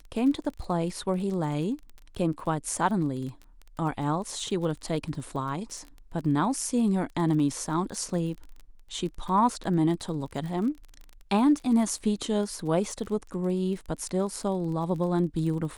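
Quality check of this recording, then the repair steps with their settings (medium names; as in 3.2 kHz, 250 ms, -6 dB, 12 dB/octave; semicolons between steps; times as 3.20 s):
crackle 30 per s -35 dBFS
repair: de-click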